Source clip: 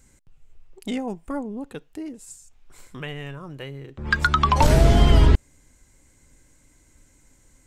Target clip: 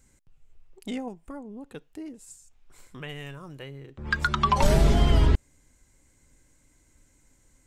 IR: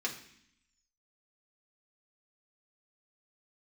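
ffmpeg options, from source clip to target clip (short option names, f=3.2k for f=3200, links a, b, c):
-filter_complex "[0:a]asettb=1/sr,asplit=3[a][b][c];[a]atrim=end=1.084[d];[b]atrim=start=1.08:end=1.72,asetpts=PTS-STARTPTS,afade=t=in:d=0.004:c=qsin,afade=t=out:st=0.636:d=0.004:c=qsin,acompressor=threshold=-35dB:ratio=2[e];[c]atrim=start=1.716[f];[d][e]acrossfade=d=0.004:c1=hsin:c2=qsin[g];[g][f]acrossfade=d=0.004:c1=qsin:c2=hsin,asettb=1/sr,asplit=3[h][i][j];[h]atrim=end=3.094[k];[i]atrim=start=3.09:end=3.59,asetpts=PTS-STARTPTS,afade=t=in:d=0.004:c=qsin,afade=t=out:st=0.496:d=0.004:c=qsin,highshelf=f=4k:g=9.5[l];[j]atrim=start=3.586[m];[k][l]acrossfade=d=0.004:c1=hsin:c2=qsin[n];[n][m]acrossfade=d=0.004:c1=qsin:c2=hsin,asettb=1/sr,asplit=3[o][p][q];[o]atrim=end=4.264[r];[p]atrim=start=4.26:end=4.94,asetpts=PTS-STARTPTS,afade=t=in:d=0.004:c=qsin,afade=t=out:st=0.676:d=0.004:c=qsin,aecho=1:1:5.1:0.65,atrim=end_sample=29988[s];[q]atrim=start=4.936[t];[r][s]acrossfade=d=0.004:c1=hsin:c2=qsin[u];[u][t]acrossfade=d=0.004:c1=qsin:c2=hsin,volume=-5dB"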